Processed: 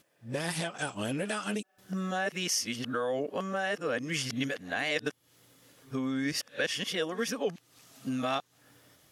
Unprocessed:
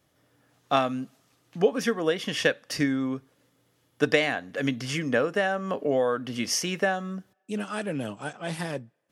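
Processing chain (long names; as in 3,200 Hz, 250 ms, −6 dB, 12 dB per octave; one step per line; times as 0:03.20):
played backwards from end to start
high-shelf EQ 2,200 Hz +8.5 dB
downward compressor 4 to 1, threshold −34 dBFS, peak gain reduction 17 dB
level +3.5 dB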